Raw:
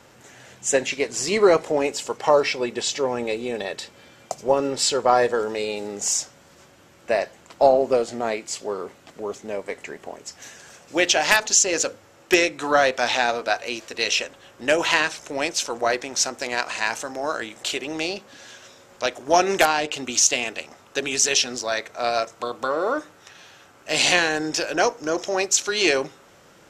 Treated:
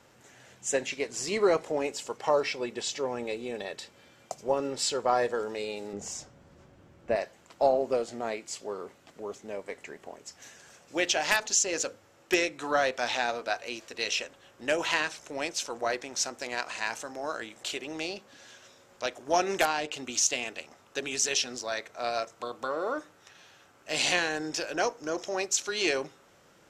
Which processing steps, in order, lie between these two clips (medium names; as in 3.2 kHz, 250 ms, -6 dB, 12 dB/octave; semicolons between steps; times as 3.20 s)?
5.93–7.16 s: tilt EQ -3 dB/octave; trim -8 dB